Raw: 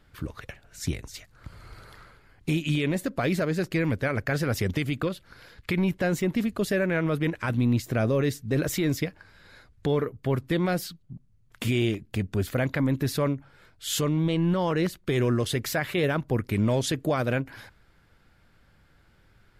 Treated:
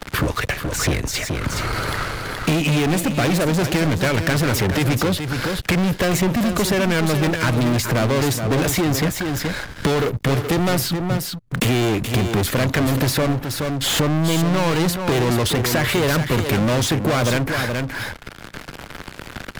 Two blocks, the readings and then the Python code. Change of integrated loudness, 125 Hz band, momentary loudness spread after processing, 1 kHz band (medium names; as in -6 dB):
+7.0 dB, +7.5 dB, 6 LU, +11.0 dB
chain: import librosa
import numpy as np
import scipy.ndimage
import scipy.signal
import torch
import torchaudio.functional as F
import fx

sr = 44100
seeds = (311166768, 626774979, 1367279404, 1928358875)

y = fx.leveller(x, sr, passes=5)
y = y + 10.0 ** (-9.0 / 20.0) * np.pad(y, (int(424 * sr / 1000.0), 0))[:len(y)]
y = fx.band_squash(y, sr, depth_pct=70)